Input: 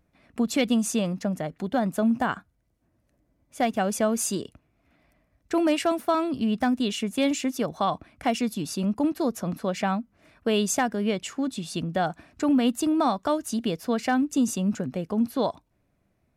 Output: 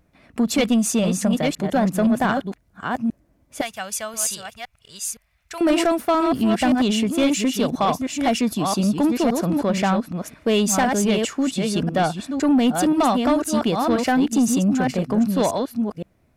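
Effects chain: chunks repeated in reverse 517 ms, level -5.5 dB; 3.61–5.61 s: amplifier tone stack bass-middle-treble 10-0-10; saturation -18.5 dBFS, distortion -16 dB; trim +7 dB

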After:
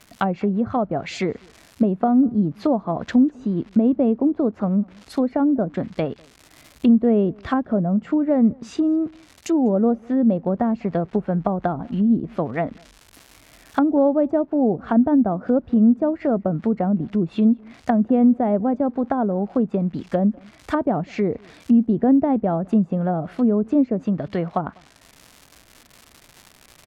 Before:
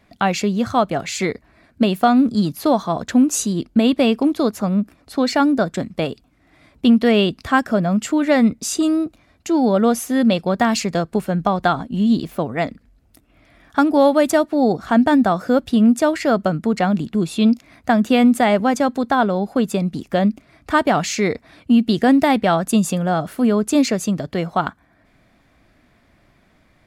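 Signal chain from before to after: crackle 290 per s -31 dBFS; low-pass that closes with the level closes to 600 Hz, closed at -14.5 dBFS; echo from a far wall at 34 m, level -28 dB; trim -1.5 dB

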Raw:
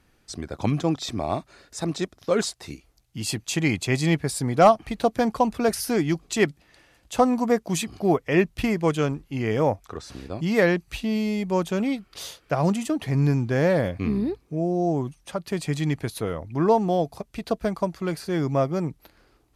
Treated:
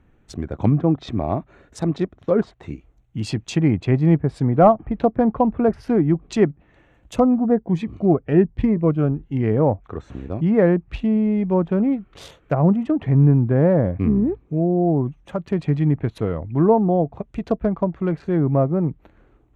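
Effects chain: local Wiener filter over 9 samples; low-pass that closes with the level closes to 1.3 kHz, closed at -20 dBFS; bass shelf 450 Hz +8 dB; 7.15–9.43 s: Shepard-style phaser rising 1.2 Hz

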